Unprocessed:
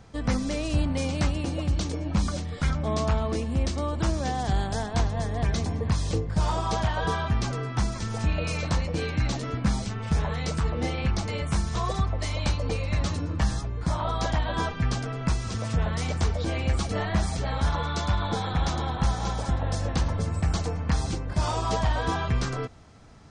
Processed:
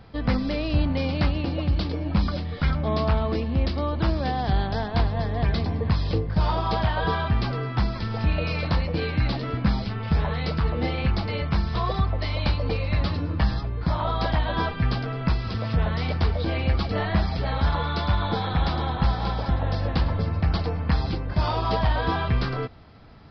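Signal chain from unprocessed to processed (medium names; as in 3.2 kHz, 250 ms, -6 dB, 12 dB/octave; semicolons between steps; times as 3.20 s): resampled via 11.025 kHz; trim +2.5 dB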